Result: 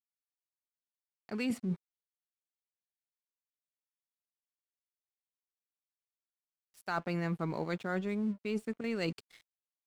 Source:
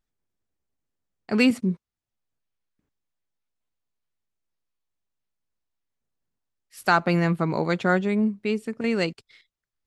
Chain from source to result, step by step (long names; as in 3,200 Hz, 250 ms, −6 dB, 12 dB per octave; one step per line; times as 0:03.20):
noise gate with hold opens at −43 dBFS
reversed playback
downward compressor 8 to 1, threshold −31 dBFS, peak gain reduction 16.5 dB
reversed playback
dead-zone distortion −56 dBFS